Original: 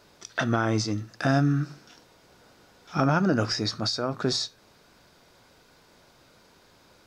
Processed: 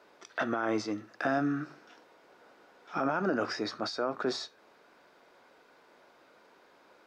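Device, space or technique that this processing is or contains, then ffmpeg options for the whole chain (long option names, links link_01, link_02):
DJ mixer with the lows and highs turned down: -filter_complex "[0:a]acrossover=split=260 2700:gain=0.0708 1 0.224[link_01][link_02][link_03];[link_01][link_02][link_03]amix=inputs=3:normalize=0,alimiter=limit=-20dB:level=0:latency=1:release=25"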